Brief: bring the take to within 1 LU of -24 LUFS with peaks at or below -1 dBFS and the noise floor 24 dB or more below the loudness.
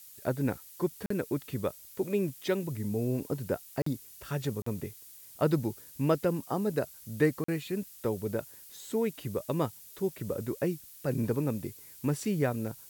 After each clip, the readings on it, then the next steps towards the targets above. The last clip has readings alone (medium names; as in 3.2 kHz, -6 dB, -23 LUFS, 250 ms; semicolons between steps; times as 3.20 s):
dropouts 4; longest dropout 44 ms; noise floor -52 dBFS; noise floor target -57 dBFS; loudness -33.0 LUFS; peak level -12.5 dBFS; loudness target -24.0 LUFS
-> interpolate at 1.06/3.82/4.62/7.44 s, 44 ms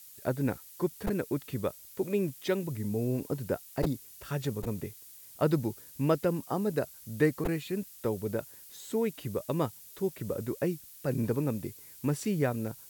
dropouts 0; noise floor -52 dBFS; noise floor target -57 dBFS
-> noise print and reduce 6 dB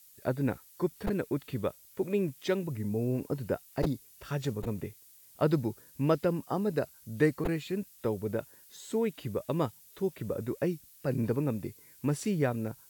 noise floor -57 dBFS; loudness -33.0 LUFS; peak level -13.0 dBFS; loudness target -24.0 LUFS
-> trim +9 dB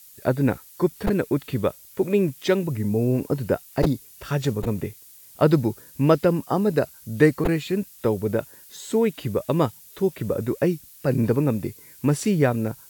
loudness -24.0 LUFS; peak level -4.0 dBFS; noise floor -48 dBFS